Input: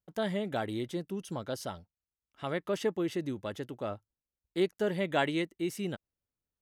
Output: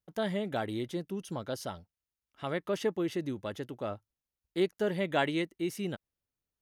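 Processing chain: band-stop 7.7 kHz, Q 11

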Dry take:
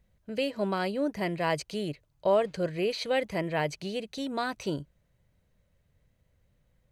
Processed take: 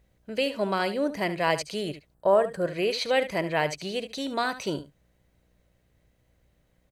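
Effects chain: mains buzz 60 Hz, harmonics 13, -66 dBFS -8 dB/octave; bass shelf 320 Hz -7.5 dB; delay 73 ms -13 dB; time-frequency box 2.14–2.66 s, 1.9–7.4 kHz -12 dB; trim +5 dB

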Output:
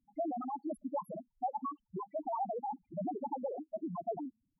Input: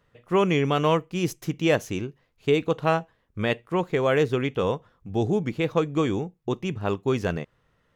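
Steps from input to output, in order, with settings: compression 5:1, threshold -22 dBFS, peak gain reduction 6.5 dB; loudest bins only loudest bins 1; speed mistake 45 rpm record played at 78 rpm; trim -2 dB

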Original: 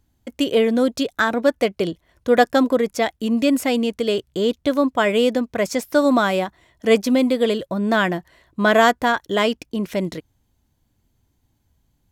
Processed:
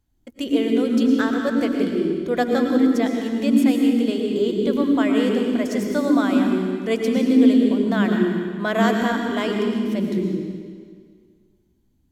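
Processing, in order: on a send: resonant low shelf 450 Hz +9 dB, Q 3 + reverberation RT60 1.9 s, pre-delay 70 ms, DRR 0.5 dB; on the sum: trim -7.5 dB

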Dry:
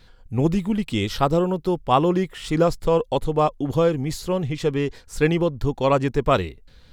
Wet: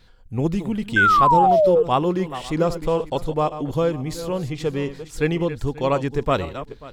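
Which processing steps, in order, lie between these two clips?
backward echo that repeats 269 ms, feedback 40%, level -12 dB; painted sound fall, 0.96–1.83 s, 450–1600 Hz -13 dBFS; trim -2 dB

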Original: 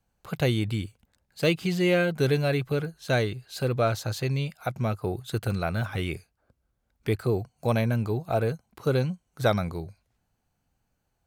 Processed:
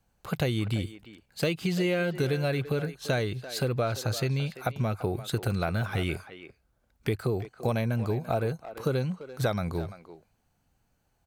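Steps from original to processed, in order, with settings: compression 5:1, threshold -28 dBFS, peak gain reduction 10 dB; speakerphone echo 340 ms, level -12 dB; trim +3.5 dB

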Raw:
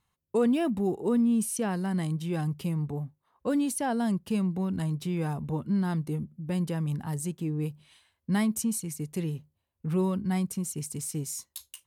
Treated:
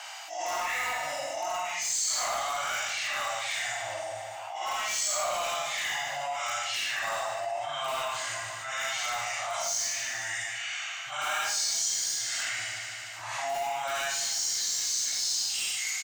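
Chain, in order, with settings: phase randomisation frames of 200 ms; elliptic high-pass 900 Hz, stop band 40 dB; treble shelf 2.7 kHz +11.5 dB; tape speed -26%; boxcar filter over 4 samples; in parallel at -10 dB: integer overflow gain 35 dB; on the sum: feedback delay 149 ms, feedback 47%, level -13 dB; on a send at -5 dB: reverberation, pre-delay 32 ms; on the sum: level flattener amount 70%

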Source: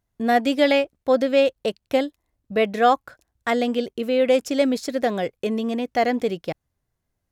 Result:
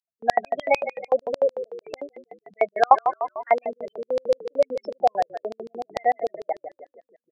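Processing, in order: treble shelf 4.1 kHz -3 dB; on a send: frequency-shifting echo 159 ms, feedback 57%, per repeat -37 Hz, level -9.5 dB; on the sum: spectral gate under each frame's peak -15 dB strong; LFO high-pass square 6.7 Hz 780–4700 Hz; trim +2 dB

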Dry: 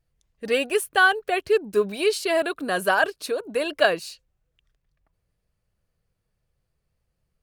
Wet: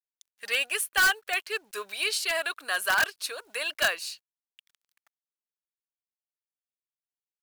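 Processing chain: high-pass 1.3 kHz 12 dB/octave; in parallel at -3 dB: integer overflow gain 17 dB; on the sum: companded quantiser 6-bit; tape noise reduction on one side only encoder only; trim -3 dB

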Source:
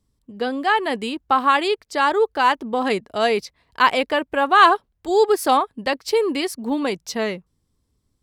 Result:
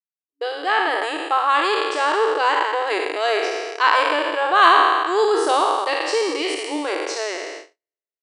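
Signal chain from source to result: spectral sustain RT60 1.80 s; gate -29 dBFS, range -52 dB; FFT band-pass 290–10000 Hz; trim -4 dB

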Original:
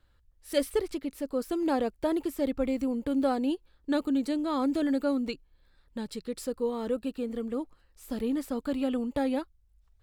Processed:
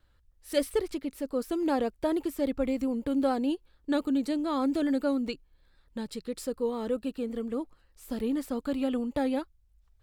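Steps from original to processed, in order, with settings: vibrato 7 Hz 33 cents

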